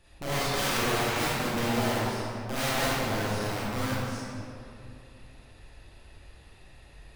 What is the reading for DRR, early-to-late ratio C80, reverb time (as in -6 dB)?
-9.0 dB, -2.5 dB, 2.6 s